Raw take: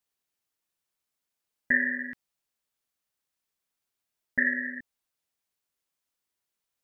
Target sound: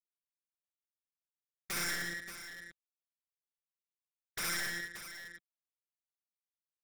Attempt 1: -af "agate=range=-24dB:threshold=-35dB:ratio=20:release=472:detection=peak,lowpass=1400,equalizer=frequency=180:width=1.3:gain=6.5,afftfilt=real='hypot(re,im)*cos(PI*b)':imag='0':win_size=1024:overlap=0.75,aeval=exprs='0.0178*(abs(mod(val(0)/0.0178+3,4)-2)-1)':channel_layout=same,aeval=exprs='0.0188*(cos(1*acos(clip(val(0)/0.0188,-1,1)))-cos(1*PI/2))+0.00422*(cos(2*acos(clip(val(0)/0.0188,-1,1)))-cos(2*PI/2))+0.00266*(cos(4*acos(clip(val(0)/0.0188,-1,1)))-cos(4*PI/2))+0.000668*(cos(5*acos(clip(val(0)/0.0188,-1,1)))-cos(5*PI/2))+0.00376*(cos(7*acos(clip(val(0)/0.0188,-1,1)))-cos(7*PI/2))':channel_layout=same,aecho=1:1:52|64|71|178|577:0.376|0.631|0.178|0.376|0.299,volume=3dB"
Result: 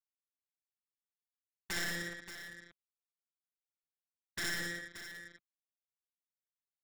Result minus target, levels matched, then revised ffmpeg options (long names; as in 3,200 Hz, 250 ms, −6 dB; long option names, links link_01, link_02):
1,000 Hz band −3.0 dB
-af "agate=range=-24dB:threshold=-35dB:ratio=20:release=472:detection=peak,equalizer=frequency=180:width=1.3:gain=6.5,afftfilt=real='hypot(re,im)*cos(PI*b)':imag='0':win_size=1024:overlap=0.75,aeval=exprs='0.0178*(abs(mod(val(0)/0.0178+3,4)-2)-1)':channel_layout=same,aeval=exprs='0.0188*(cos(1*acos(clip(val(0)/0.0188,-1,1)))-cos(1*PI/2))+0.00422*(cos(2*acos(clip(val(0)/0.0188,-1,1)))-cos(2*PI/2))+0.00266*(cos(4*acos(clip(val(0)/0.0188,-1,1)))-cos(4*PI/2))+0.000668*(cos(5*acos(clip(val(0)/0.0188,-1,1)))-cos(5*PI/2))+0.00376*(cos(7*acos(clip(val(0)/0.0188,-1,1)))-cos(7*PI/2))':channel_layout=same,aecho=1:1:52|64|71|178|577:0.376|0.631|0.178|0.376|0.299,volume=3dB"